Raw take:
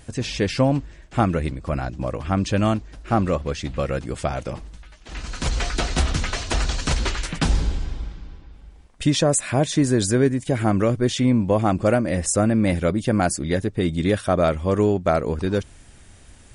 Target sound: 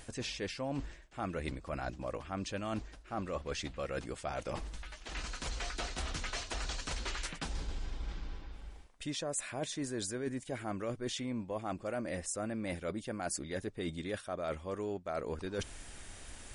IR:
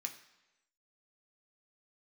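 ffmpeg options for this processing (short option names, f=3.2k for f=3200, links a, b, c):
-af "equalizer=f=110:w=0.44:g=-9,areverse,acompressor=threshold=-37dB:ratio=8,areverse,volume=1.5dB"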